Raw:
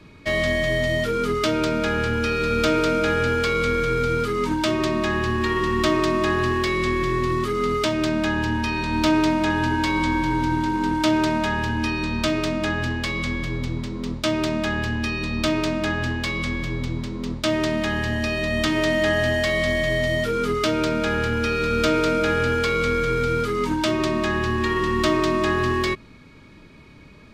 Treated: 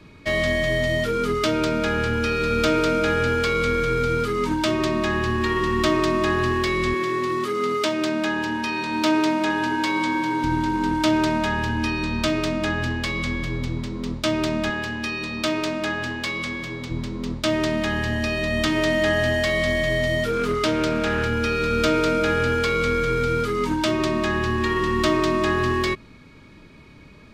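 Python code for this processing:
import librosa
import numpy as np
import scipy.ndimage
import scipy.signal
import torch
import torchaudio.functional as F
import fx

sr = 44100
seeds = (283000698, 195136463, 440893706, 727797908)

y = fx.highpass(x, sr, hz=230.0, slope=12, at=(6.94, 10.44))
y = fx.highpass(y, sr, hz=280.0, slope=6, at=(14.7, 16.91))
y = fx.doppler_dist(y, sr, depth_ms=0.14, at=(20.3, 21.26))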